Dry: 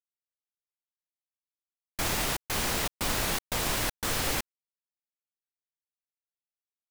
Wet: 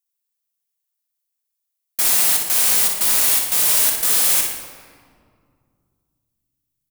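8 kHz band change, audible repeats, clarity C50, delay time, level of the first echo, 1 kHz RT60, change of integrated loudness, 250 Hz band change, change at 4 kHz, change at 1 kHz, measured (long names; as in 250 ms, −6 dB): +16.0 dB, 1, 2.5 dB, 60 ms, −7.0 dB, 2.0 s, +15.0 dB, −3.0 dB, +9.0 dB, +2.5 dB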